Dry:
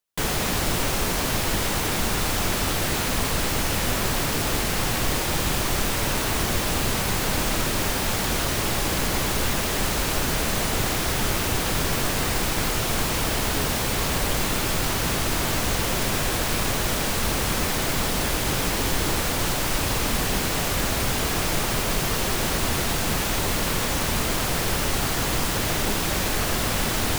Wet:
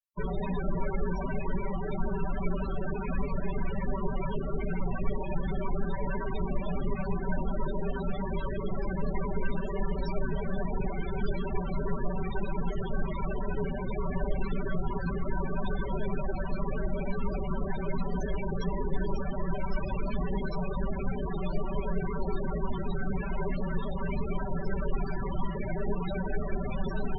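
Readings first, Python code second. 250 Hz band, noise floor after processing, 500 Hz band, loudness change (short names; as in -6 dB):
-5.0 dB, -34 dBFS, -5.5 dB, -11.0 dB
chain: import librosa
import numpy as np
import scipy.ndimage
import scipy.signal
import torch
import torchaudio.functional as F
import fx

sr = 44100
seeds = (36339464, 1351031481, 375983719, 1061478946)

y = x + 0.76 * np.pad(x, (int(5.2 * sr / 1000.0), 0))[:len(x)]
y = fx.spec_topn(y, sr, count=16)
y = fx.ripple_eq(y, sr, per_octave=1.6, db=8)
y = y * librosa.db_to_amplitude(-6.5)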